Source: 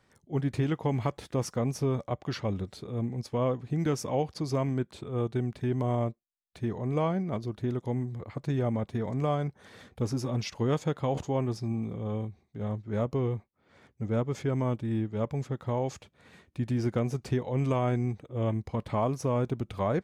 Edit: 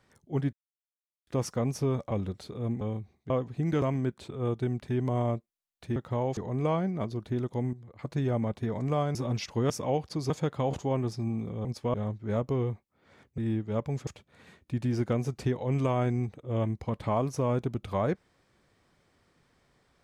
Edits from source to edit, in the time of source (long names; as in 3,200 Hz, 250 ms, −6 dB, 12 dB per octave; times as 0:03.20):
0:00.53–0:01.27: silence
0:02.11–0:02.44: remove
0:03.14–0:03.43: swap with 0:12.09–0:12.58
0:03.95–0:04.55: move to 0:10.74
0:08.05–0:08.31: clip gain −11 dB
0:09.47–0:10.19: remove
0:14.02–0:14.83: remove
0:15.52–0:15.93: move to 0:06.69